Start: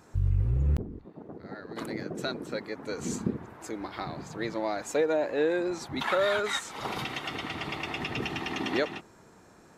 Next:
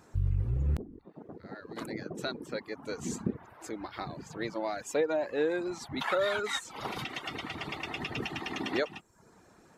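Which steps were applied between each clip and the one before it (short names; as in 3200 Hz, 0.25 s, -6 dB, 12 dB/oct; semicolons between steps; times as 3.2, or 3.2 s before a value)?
reverb removal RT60 0.59 s; gain -2 dB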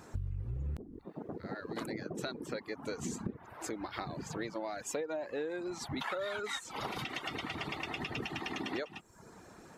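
compressor 5:1, threshold -41 dBFS, peak gain reduction 15 dB; gain +5 dB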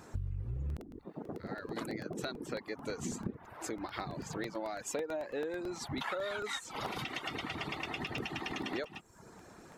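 crackling interface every 0.11 s, samples 64, repeat, from 0.7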